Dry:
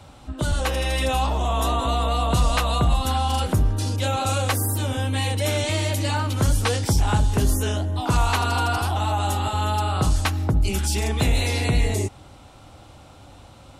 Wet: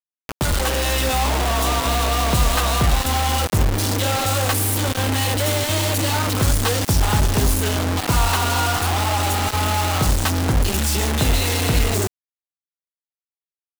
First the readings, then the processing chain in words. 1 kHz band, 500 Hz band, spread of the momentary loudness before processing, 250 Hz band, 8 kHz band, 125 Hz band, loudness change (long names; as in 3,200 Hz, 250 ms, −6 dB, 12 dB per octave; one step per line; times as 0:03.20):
+2.5 dB, +3.0 dB, 3 LU, +3.0 dB, +7.0 dB, +1.5 dB, +3.5 dB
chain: notch filter 2,300 Hz, Q 7.4
bit reduction 4 bits
level +1.5 dB